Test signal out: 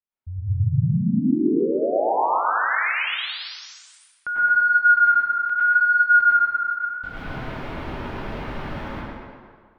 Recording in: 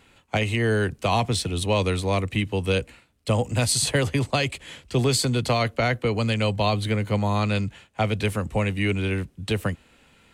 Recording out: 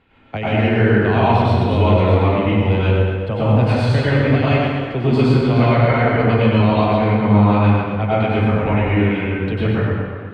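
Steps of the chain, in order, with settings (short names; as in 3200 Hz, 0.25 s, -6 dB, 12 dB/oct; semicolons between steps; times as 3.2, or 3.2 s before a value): air absorption 370 m; on a send: tape echo 0.119 s, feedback 61%, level -4 dB, low-pass 5800 Hz; on the sum: plate-style reverb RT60 1.4 s, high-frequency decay 0.45×, pre-delay 85 ms, DRR -8.5 dB; gain -1 dB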